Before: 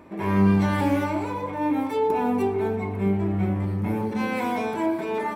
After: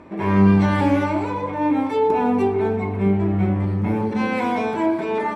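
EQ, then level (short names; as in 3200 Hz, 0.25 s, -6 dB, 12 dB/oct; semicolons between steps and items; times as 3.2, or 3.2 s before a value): air absorption 63 m; +4.5 dB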